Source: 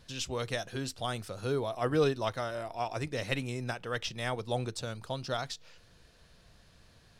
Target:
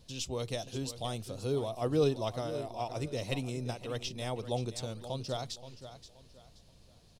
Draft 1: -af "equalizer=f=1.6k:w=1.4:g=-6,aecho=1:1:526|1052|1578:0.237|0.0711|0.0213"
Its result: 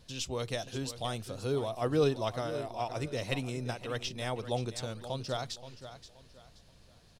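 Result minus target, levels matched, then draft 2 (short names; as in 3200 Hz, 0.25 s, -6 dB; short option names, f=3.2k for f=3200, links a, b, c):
2000 Hz band +4.0 dB
-af "equalizer=f=1.6k:w=1.4:g=-14,aecho=1:1:526|1052|1578:0.237|0.0711|0.0213"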